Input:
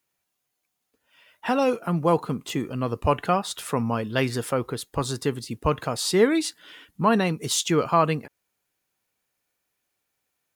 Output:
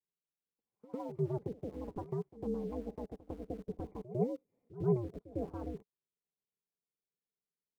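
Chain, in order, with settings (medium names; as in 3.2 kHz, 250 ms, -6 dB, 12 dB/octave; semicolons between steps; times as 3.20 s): gliding tape speed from 162% -> 109%; cascade formant filter u; comb of notches 820 Hz; in parallel at -5 dB: small samples zeroed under -46 dBFS; on the sum: ring modulator 120 Hz; on a send: reverse echo 102 ms -16.5 dB; on the sum: trim -4.5 dB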